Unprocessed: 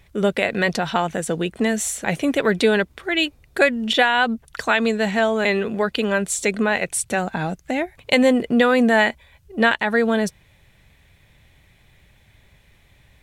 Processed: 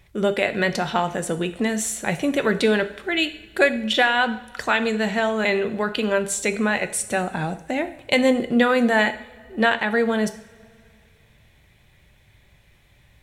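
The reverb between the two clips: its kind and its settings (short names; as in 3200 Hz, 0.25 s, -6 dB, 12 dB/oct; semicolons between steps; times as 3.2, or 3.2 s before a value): two-slope reverb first 0.57 s, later 2.7 s, from -20 dB, DRR 8.5 dB; gain -2 dB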